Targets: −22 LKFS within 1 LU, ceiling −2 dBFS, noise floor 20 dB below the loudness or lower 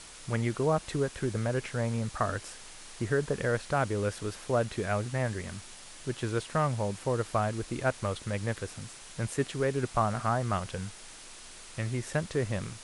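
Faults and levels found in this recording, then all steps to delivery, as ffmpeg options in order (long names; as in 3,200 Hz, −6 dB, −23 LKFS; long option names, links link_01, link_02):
background noise floor −48 dBFS; target noise floor −52 dBFS; integrated loudness −31.5 LKFS; sample peak −13.0 dBFS; target loudness −22.0 LKFS
→ -af "afftdn=noise_reduction=6:noise_floor=-48"
-af "volume=9.5dB"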